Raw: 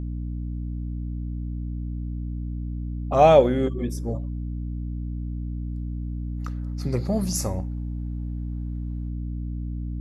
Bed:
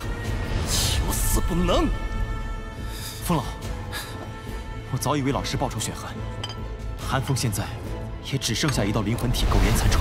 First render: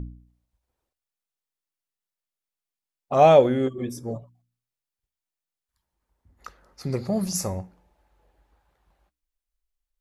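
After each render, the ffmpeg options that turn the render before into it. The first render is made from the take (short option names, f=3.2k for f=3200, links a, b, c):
-af "bandreject=f=60:t=h:w=4,bandreject=f=120:t=h:w=4,bandreject=f=180:t=h:w=4,bandreject=f=240:t=h:w=4,bandreject=f=300:t=h:w=4"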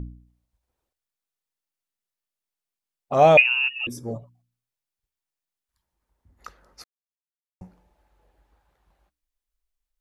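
-filter_complex "[0:a]asettb=1/sr,asplit=3[a][b][c];[a]atrim=end=3.374[d];[b]atrim=start=3.37:end=3.87,asetpts=PTS-STARTPTS,afade=t=in:d=0.004:c=qsin,afade=t=out:st=0.496:d=0.004:c=qsin,lowpass=f=2.6k:t=q:w=0.5098,lowpass=f=2.6k:t=q:w=0.6013,lowpass=f=2.6k:t=q:w=0.9,lowpass=f=2.6k:t=q:w=2.563,afreqshift=-3000[e];[c]atrim=start=3.866[f];[d][e]acrossfade=d=0.004:c1=hsin:c2=qsin[g];[g][f]acrossfade=d=0.004:c1=qsin:c2=hsin,asplit=3[h][i][j];[h]atrim=end=6.84,asetpts=PTS-STARTPTS,afade=t=out:st=6.836:d=0.004:c=hsin[k];[i]atrim=start=6.84:end=7.61,asetpts=PTS-STARTPTS,volume=0[l];[j]atrim=start=7.61,asetpts=PTS-STARTPTS,afade=t=in:d=0.004:c=hsin[m];[k][l][m]concat=n=3:v=0:a=1"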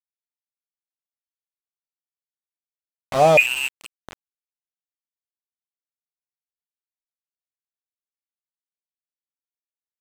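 -af "aeval=exprs='val(0)*gte(abs(val(0)),0.0794)':c=same,adynamicsmooth=sensitivity=7.5:basefreq=3.1k"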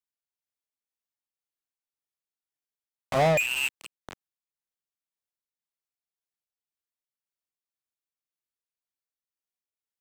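-filter_complex "[0:a]acrossover=split=270[a][b];[b]asoftclip=type=tanh:threshold=-18.5dB[c];[a][c]amix=inputs=2:normalize=0,tremolo=f=1.9:d=0.34"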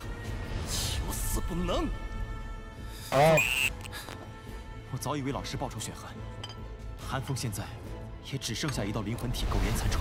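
-filter_complex "[1:a]volume=-9dB[a];[0:a][a]amix=inputs=2:normalize=0"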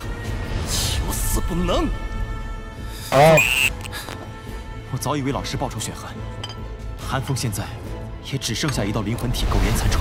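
-af "volume=9.5dB"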